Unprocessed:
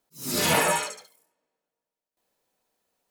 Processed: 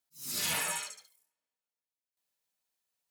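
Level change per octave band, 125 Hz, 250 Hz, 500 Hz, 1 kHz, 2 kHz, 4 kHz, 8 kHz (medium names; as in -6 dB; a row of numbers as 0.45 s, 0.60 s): -16.0 dB, -18.0 dB, -19.5 dB, -15.0 dB, -10.0 dB, -7.0 dB, -6.0 dB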